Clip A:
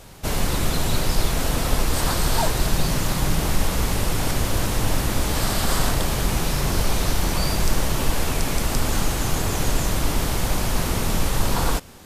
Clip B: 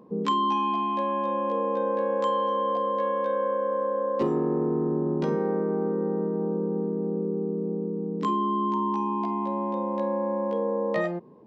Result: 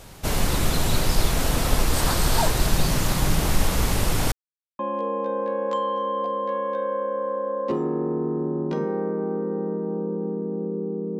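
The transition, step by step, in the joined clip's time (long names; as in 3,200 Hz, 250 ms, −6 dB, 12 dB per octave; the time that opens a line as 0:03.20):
clip A
0:04.32–0:04.79: silence
0:04.79: continue with clip B from 0:01.30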